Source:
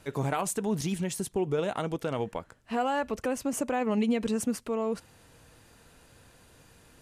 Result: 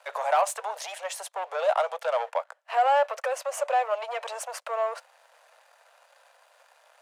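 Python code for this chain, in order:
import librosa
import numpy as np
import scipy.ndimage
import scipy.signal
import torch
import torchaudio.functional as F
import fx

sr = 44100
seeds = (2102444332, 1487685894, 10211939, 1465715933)

p1 = fx.level_steps(x, sr, step_db=11)
p2 = x + (p1 * 10.0 ** (-2.0 / 20.0))
p3 = fx.leveller(p2, sr, passes=2)
p4 = scipy.signal.sosfilt(scipy.signal.butter(12, 560.0, 'highpass', fs=sr, output='sos'), p3)
y = fx.tilt_eq(p4, sr, slope=-3.5)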